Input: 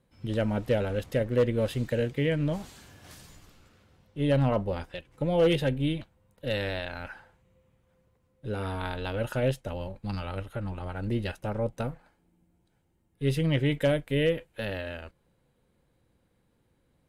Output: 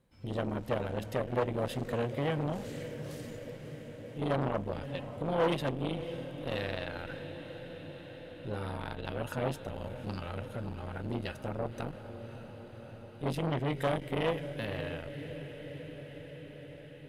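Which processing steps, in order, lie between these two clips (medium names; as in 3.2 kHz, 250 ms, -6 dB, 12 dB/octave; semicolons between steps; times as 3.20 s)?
1.93–2.38 s: high-pass 59 Hz 24 dB/octave; echo that smears into a reverb 570 ms, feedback 74%, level -14 dB; on a send at -22 dB: reverberation RT60 3.6 s, pre-delay 76 ms; on the sum: transformer saturation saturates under 690 Hz; trim -2 dB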